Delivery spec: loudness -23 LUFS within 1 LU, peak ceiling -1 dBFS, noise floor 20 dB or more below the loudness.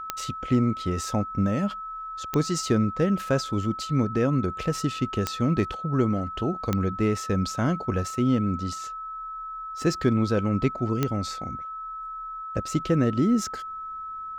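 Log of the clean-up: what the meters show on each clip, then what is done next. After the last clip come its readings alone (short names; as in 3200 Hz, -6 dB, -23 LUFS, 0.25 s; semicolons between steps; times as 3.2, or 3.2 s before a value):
clicks 5; steady tone 1300 Hz; tone level -33 dBFS; loudness -26.5 LUFS; peak -8.5 dBFS; loudness target -23.0 LUFS
-> de-click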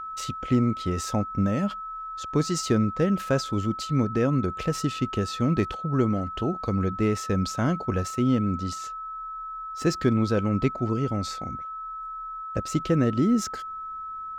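clicks 0; steady tone 1300 Hz; tone level -33 dBFS
-> notch 1300 Hz, Q 30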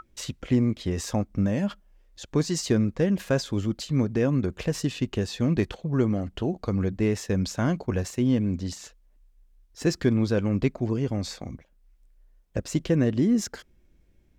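steady tone none; loudness -26.5 LUFS; peak -9.0 dBFS; loudness target -23.0 LUFS
-> gain +3.5 dB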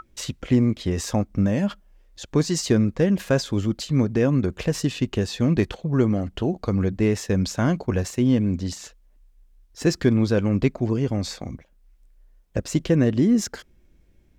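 loudness -23.0 LUFS; peak -5.5 dBFS; noise floor -58 dBFS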